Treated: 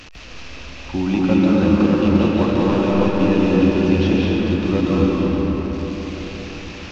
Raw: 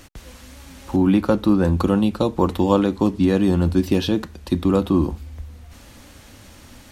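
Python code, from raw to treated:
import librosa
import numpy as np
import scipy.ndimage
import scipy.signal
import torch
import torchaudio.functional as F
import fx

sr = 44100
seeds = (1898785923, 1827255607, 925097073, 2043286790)

y = fx.delta_mod(x, sr, bps=32000, step_db=-31.5)
y = fx.peak_eq(y, sr, hz=2600.0, db=9.5, octaves=0.37)
y = fx.rev_freeverb(y, sr, rt60_s=4.8, hf_ratio=0.45, predelay_ms=110, drr_db=-5.5)
y = y * 10.0 ** (-4.5 / 20.0)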